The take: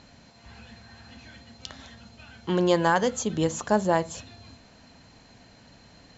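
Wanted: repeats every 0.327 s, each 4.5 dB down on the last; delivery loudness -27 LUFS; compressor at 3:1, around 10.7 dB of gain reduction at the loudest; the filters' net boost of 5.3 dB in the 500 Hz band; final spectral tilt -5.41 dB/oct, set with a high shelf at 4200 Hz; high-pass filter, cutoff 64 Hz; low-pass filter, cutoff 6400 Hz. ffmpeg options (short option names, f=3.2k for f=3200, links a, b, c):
-af "highpass=64,lowpass=6.4k,equalizer=f=500:t=o:g=6.5,highshelf=f=4.2k:g=-8.5,acompressor=threshold=-28dB:ratio=3,aecho=1:1:327|654|981|1308|1635|1962|2289|2616|2943:0.596|0.357|0.214|0.129|0.0772|0.0463|0.0278|0.0167|0.01,volume=4dB"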